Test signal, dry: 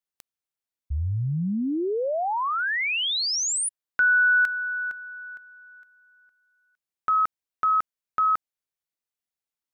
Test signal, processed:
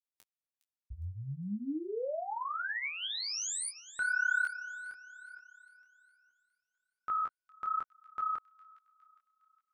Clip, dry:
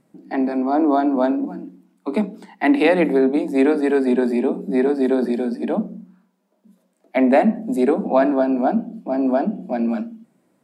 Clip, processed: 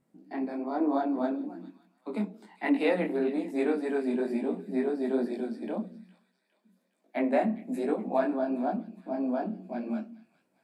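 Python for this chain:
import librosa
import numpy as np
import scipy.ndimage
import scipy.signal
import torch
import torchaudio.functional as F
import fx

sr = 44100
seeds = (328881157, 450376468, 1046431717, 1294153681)

y = fx.echo_wet_highpass(x, sr, ms=410, feedback_pct=48, hz=2200.0, wet_db=-15.0)
y = fx.detune_double(y, sr, cents=39)
y = y * librosa.db_to_amplitude(-7.5)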